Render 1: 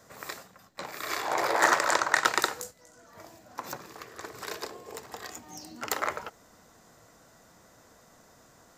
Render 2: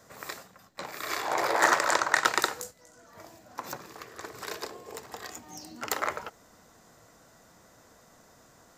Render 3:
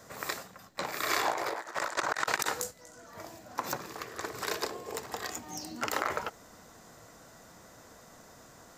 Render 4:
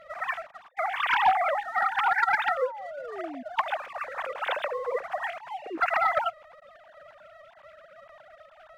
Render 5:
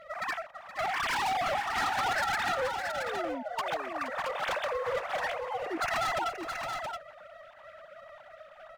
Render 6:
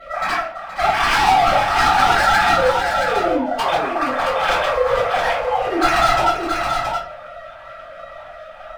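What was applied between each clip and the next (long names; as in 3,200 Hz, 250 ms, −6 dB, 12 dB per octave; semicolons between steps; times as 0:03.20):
no processing that can be heard
compressor whose output falls as the input rises −31 dBFS, ratio −0.5
three sine waves on the formant tracks; leveller curve on the samples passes 1; sound drawn into the spectrogram fall, 0:02.50–0:03.43, 240–1,400 Hz −43 dBFS; level +4 dB
gain into a clipping stage and back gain 28.5 dB; on a send: multi-tap delay 471/673 ms −12/−6 dB
convolution reverb RT60 0.45 s, pre-delay 3 ms, DRR −9 dB; level −1 dB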